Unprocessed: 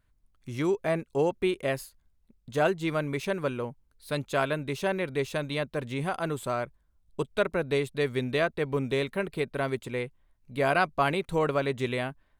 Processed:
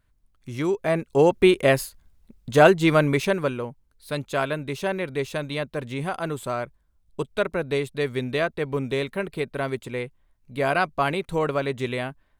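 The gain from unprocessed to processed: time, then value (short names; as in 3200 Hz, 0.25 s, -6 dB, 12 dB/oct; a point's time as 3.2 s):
0.73 s +2.5 dB
1.42 s +10.5 dB
3.07 s +10.5 dB
3.65 s +2 dB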